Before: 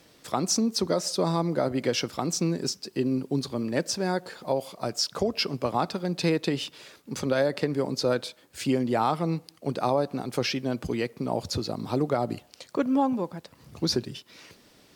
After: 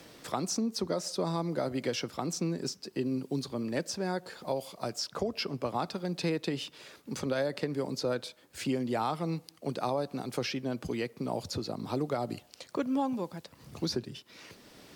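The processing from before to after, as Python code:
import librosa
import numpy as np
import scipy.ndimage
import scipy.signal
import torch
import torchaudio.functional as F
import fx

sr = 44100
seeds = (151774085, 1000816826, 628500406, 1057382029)

y = fx.band_squash(x, sr, depth_pct=40)
y = y * 10.0 ** (-6.0 / 20.0)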